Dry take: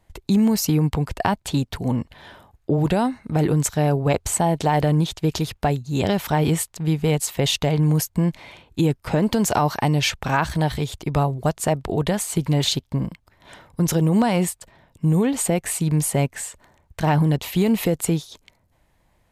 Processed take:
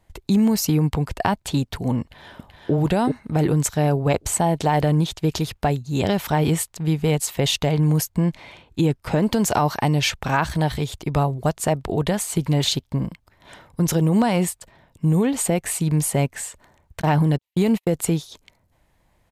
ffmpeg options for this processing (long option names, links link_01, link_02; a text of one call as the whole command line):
ffmpeg -i in.wav -filter_complex "[0:a]asplit=2[link_01][link_02];[link_02]afade=type=in:start_time=2.01:duration=0.01,afade=type=out:start_time=2.73:duration=0.01,aecho=0:1:380|760|1140|1520:0.668344|0.200503|0.060151|0.0180453[link_03];[link_01][link_03]amix=inputs=2:normalize=0,asettb=1/sr,asplit=3[link_04][link_05][link_06];[link_04]atrim=end=8.124[link_07];[link_05]atrim=start=8.12:end=9.04,asetpts=PTS-STARTPTS,afade=type=in:duration=0.004:curve=qsin,afade=type=out:start_time=0.916:duration=0.004:curve=qsin,highshelf=frequency=12000:gain=-8.5[link_08];[link_06]atrim=start=9.036[link_09];[link_07][link_08]acrossfade=duration=0.004:curve1=hsin:curve2=qsin[link_10];[link_10][link_09]acrossfade=duration=0.004:curve1=qsin:curve2=hsin,asplit=3[link_11][link_12][link_13];[link_11]afade=type=out:start_time=17:duration=0.02[link_14];[link_12]agate=range=-55dB:threshold=-23dB:ratio=16:release=100:detection=peak,afade=type=in:start_time=17:duration=0.02,afade=type=out:start_time=17.92:duration=0.02[link_15];[link_13]afade=type=in:start_time=17.92:duration=0.02[link_16];[link_14][link_15][link_16]amix=inputs=3:normalize=0" out.wav